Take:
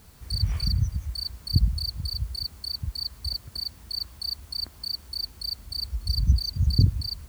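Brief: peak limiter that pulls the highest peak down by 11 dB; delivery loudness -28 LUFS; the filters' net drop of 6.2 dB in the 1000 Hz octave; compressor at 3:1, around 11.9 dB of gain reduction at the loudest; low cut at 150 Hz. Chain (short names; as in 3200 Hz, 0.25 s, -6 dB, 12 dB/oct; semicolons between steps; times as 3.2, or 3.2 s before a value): HPF 150 Hz; bell 1000 Hz -8 dB; compressor 3:1, threshold -37 dBFS; gain +15.5 dB; limiter -20 dBFS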